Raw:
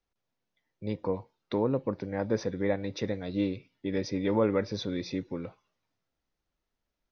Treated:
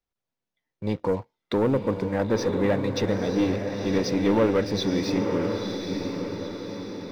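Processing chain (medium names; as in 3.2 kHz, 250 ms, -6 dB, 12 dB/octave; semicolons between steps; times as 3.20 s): waveshaping leveller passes 2; echo that smears into a reverb 950 ms, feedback 51%, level -5 dB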